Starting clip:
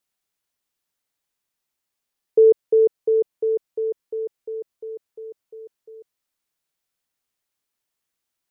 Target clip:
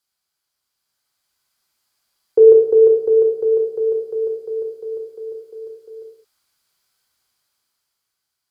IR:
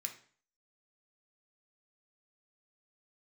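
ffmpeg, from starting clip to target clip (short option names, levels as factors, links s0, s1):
-filter_complex "[1:a]atrim=start_sample=2205,atrim=end_sample=6174,asetrate=27342,aresample=44100[s0];[0:a][s0]afir=irnorm=-1:irlink=0,dynaudnorm=f=210:g=11:m=2.82,volume=1.26"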